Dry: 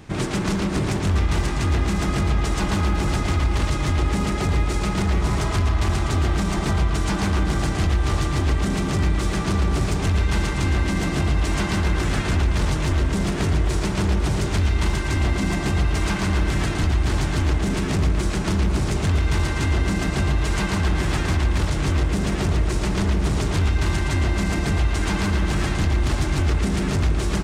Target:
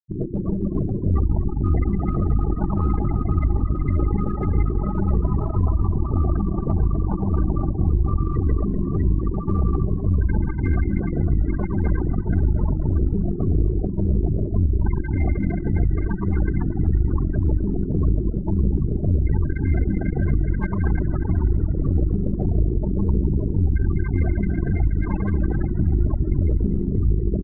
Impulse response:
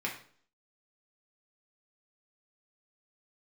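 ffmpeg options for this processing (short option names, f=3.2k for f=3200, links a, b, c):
-filter_complex "[0:a]acrossover=split=1500[a][b];[b]aeval=exprs='(mod(21.1*val(0)+1,2)-1)/21.1':c=same[c];[a][c]amix=inputs=2:normalize=0,aeval=exprs='0.299*(cos(1*acos(clip(val(0)/0.299,-1,1)))-cos(1*PI/2))+0.00422*(cos(3*acos(clip(val(0)/0.299,-1,1)))-cos(3*PI/2))+0.0422*(cos(4*acos(clip(val(0)/0.299,-1,1)))-cos(4*PI/2))+0.0168*(cos(7*acos(clip(val(0)/0.299,-1,1)))-cos(7*PI/2))':c=same,afftfilt=real='re*gte(hypot(re,im),0.141)':imag='im*gte(hypot(re,im),0.141)':win_size=1024:overlap=0.75,asplit=2[d][e];[e]aeval=exprs='clip(val(0),-1,0.0531)':c=same,volume=-9dB[f];[d][f]amix=inputs=2:normalize=0,highshelf=f=8.9k:g=7,asplit=8[g][h][i][j][k][l][m][n];[h]adelay=245,afreqshift=-58,volume=-15dB[o];[i]adelay=490,afreqshift=-116,volume=-19.2dB[p];[j]adelay=735,afreqshift=-174,volume=-23.3dB[q];[k]adelay=980,afreqshift=-232,volume=-27.5dB[r];[l]adelay=1225,afreqshift=-290,volume=-31.6dB[s];[m]adelay=1470,afreqshift=-348,volume=-35.8dB[t];[n]adelay=1715,afreqshift=-406,volume=-39.9dB[u];[g][o][p][q][r][s][t][u]amix=inputs=8:normalize=0,volume=-2dB"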